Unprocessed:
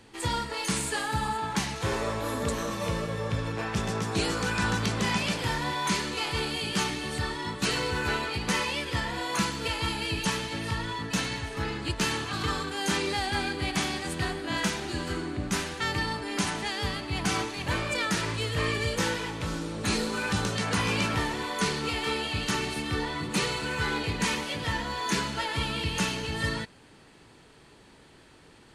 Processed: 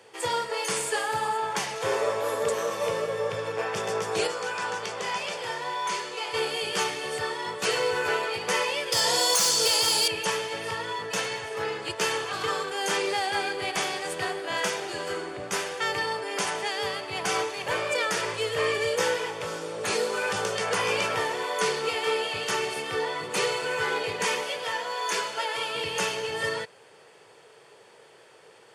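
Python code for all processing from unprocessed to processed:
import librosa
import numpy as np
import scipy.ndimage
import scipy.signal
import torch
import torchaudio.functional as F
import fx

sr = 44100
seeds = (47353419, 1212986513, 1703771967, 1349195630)

y = fx.chain(x, sr, fx.lowpass(hz=10000.0, slope=12),
    fx.low_shelf(hz=180.0, db=-6.5),
    fx.comb_fb(f0_hz=52.0, decay_s=0.16, harmonics='odd', damping=0.0, mix_pct=60), at=(4.27, 6.34))
y = fx.chain(y, sr, fx.high_shelf_res(hz=3400.0, db=13.5, q=1.5),
    fx.clip_hard(threshold_db=-21.0),
    fx.env_flatten(amount_pct=70), at=(8.92, 10.08))
y = fx.chain(y, sr, fx.highpass(hz=440.0, slope=6),
    fx.notch(hz=1900.0, q=17.0), at=(24.51, 25.75))
y = scipy.signal.sosfilt(scipy.signal.butter(4, 110.0, 'highpass', fs=sr, output='sos'), y)
y = fx.low_shelf_res(y, sr, hz=350.0, db=-9.0, q=3.0)
y = fx.notch(y, sr, hz=4000.0, q=9.0)
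y = y * librosa.db_to_amplitude(1.5)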